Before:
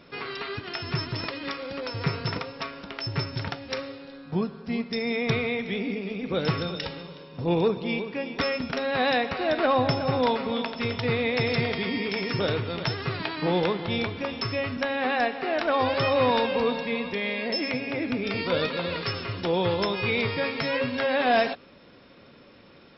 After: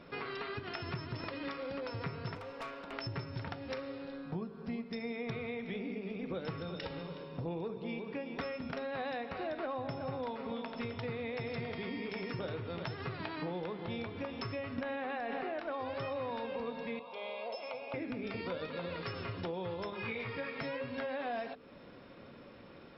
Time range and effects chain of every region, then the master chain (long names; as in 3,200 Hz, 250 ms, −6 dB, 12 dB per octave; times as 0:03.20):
0:02.35–0:02.93: low-pass filter 5,200 Hz + bass and treble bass −12 dB, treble −2 dB + tube saturation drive 35 dB, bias 0.35
0:14.78–0:15.60: low-pass filter 4,500 Hz + envelope flattener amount 100%
0:16.99–0:17.94: band-pass filter 560–3,500 Hz + phaser with its sweep stopped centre 760 Hz, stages 4
0:19.90–0:20.61: parametric band 1,700 Hz +6 dB 1.3 octaves + micro pitch shift up and down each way 19 cents
whole clip: high-shelf EQ 3,000 Hz −11 dB; mains-hum notches 50/100/150/200/250/300/350/400/450 Hz; downward compressor, threshold −37 dBFS